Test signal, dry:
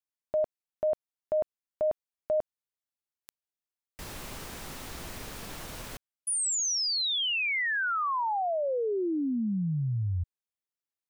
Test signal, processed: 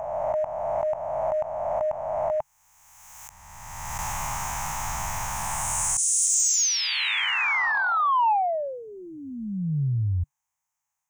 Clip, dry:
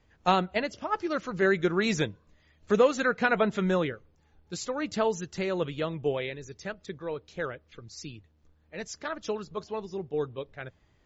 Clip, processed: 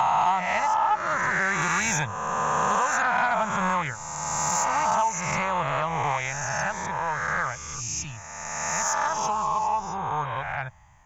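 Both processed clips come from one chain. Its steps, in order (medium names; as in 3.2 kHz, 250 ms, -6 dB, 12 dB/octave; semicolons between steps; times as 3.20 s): reverse spectral sustain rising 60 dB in 1.87 s; FFT filter 140 Hz 0 dB, 310 Hz -18 dB, 450 Hz -19 dB, 870 Hz +12 dB, 1.4 kHz 0 dB, 2.2 kHz +1 dB, 4.4 kHz -13 dB, 6.5 kHz +9 dB, 9.3 kHz -2 dB; compression 3:1, threshold -28 dBFS; saturation -19.5 dBFS; trim +6.5 dB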